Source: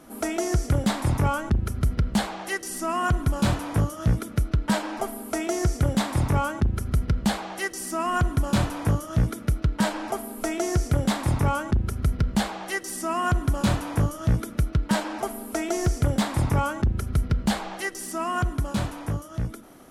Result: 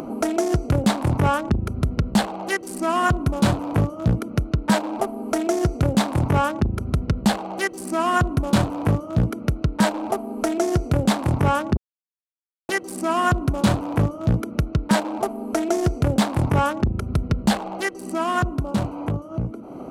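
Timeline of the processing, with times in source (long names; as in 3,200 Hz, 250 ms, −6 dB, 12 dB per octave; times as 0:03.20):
0:11.77–0:12.69: silence
whole clip: adaptive Wiener filter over 25 samples; high-pass filter 140 Hz 6 dB per octave; upward compression, threshold −29 dBFS; level +6.5 dB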